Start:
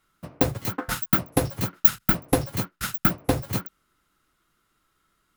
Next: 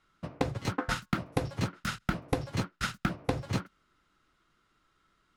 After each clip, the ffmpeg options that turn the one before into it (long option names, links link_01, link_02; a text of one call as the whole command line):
ffmpeg -i in.wav -af "lowpass=5500,acompressor=threshold=-25dB:ratio=10" out.wav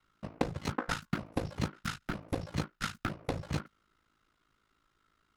ffmpeg -i in.wav -af "aeval=exprs='val(0)*sin(2*PI*27*n/s)':channel_layout=same" out.wav